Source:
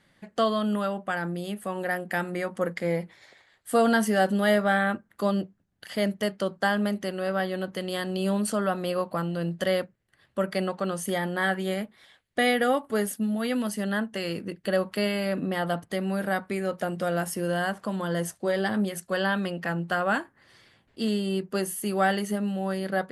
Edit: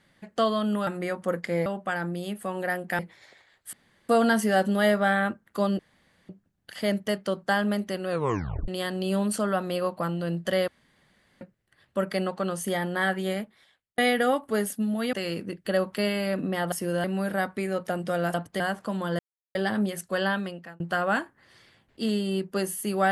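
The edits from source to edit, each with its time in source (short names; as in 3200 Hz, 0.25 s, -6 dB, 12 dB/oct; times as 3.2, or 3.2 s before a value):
2.2–2.99 move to 0.87
3.73 insert room tone 0.36 s
5.43 insert room tone 0.50 s
7.23 tape stop 0.59 s
9.82 insert room tone 0.73 s
11.76–12.39 fade out
13.54–14.12 cut
15.71–15.97 swap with 17.27–17.59
18.18–18.54 mute
19.26–19.79 fade out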